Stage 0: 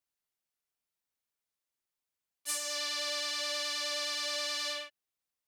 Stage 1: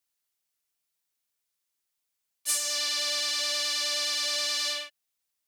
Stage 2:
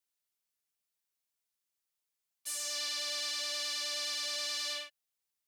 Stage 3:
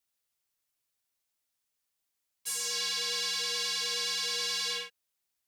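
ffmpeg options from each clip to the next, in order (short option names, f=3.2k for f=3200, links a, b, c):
-af "highshelf=f=2.2k:g=8.5"
-af "alimiter=limit=-18dB:level=0:latency=1,volume=-5.5dB"
-af "afreqshift=-110,volume=4dB"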